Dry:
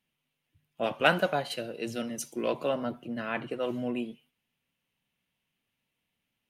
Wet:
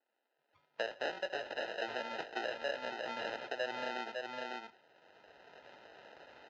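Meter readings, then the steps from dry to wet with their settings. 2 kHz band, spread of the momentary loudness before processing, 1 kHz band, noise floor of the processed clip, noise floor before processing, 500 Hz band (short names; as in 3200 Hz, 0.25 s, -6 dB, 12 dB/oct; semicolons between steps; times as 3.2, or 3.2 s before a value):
-6.0 dB, 11 LU, -7.0 dB, -84 dBFS, -83 dBFS, -8.0 dB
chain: recorder AGC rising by 13 dB/s; sample-and-hold 39×; HPF 45 Hz; echo 0.552 s -8.5 dB; compressor 3:1, threshold -37 dBFS, peak gain reduction 15.5 dB; LPF 6200 Hz 12 dB/oct; three-band isolator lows -24 dB, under 490 Hz, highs -22 dB, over 4700 Hz; gain +2.5 dB; Vorbis 64 kbps 16000 Hz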